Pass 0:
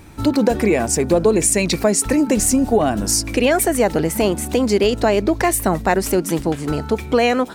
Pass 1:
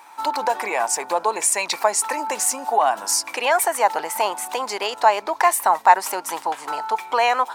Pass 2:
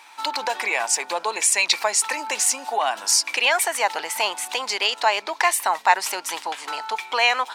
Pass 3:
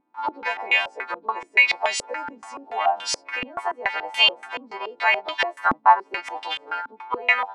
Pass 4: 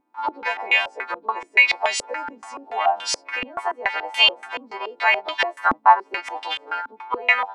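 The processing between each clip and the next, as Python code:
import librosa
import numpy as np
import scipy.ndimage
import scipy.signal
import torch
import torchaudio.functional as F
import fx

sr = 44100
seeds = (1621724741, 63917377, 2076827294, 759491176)

y1 = fx.highpass_res(x, sr, hz=910.0, q=5.0)
y1 = y1 * librosa.db_to_amplitude(-2.5)
y2 = fx.weighting(y1, sr, curve='D')
y2 = y2 * librosa.db_to_amplitude(-4.5)
y3 = fx.freq_snap(y2, sr, grid_st=2)
y3 = fx.filter_held_lowpass(y3, sr, hz=7.0, low_hz=260.0, high_hz=3100.0)
y3 = y3 * librosa.db_to_amplitude(-5.5)
y4 = fx.peak_eq(y3, sr, hz=140.0, db=-6.0, octaves=0.98)
y4 = y4 * librosa.db_to_amplitude(1.5)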